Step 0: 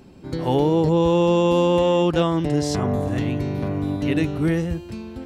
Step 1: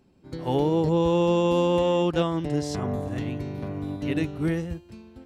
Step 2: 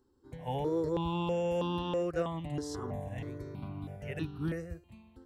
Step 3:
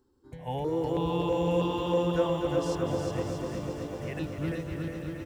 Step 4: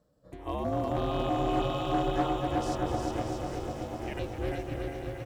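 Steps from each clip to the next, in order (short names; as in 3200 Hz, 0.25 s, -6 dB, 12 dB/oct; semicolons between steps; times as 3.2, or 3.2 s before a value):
upward expander 1.5:1, over -38 dBFS; gain -3.5 dB
step phaser 3.1 Hz 650–2100 Hz; gain -6 dB
bouncing-ball echo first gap 0.36 s, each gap 0.75×, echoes 5; lo-fi delay 0.249 s, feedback 80%, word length 10-bit, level -8.5 dB; gain +1.5 dB
ring modulator 210 Hz; one-sided clip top -27 dBFS; gain +2.5 dB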